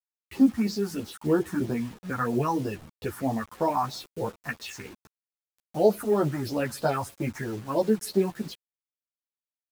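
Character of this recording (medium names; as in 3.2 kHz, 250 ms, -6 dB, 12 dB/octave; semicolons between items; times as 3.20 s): phasing stages 4, 3.1 Hz, lowest notch 450–2200 Hz; a quantiser's noise floor 8-bit, dither none; a shimmering, thickened sound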